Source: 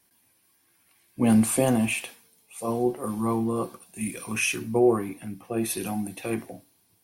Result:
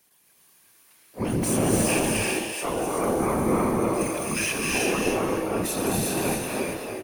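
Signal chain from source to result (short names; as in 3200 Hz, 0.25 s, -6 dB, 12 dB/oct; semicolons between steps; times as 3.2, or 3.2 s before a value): HPF 62 Hz 12 dB/oct; low shelf 370 Hz -7 dB; limiter -22 dBFS, peak gain reduction 9.5 dB; harmoniser -7 st -10 dB, +12 st -11 dB; frequency-shifting echo 0.259 s, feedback 30%, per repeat +91 Hz, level -4.5 dB; whisperiser; non-linear reverb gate 0.42 s rising, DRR -1.5 dB; gain +2.5 dB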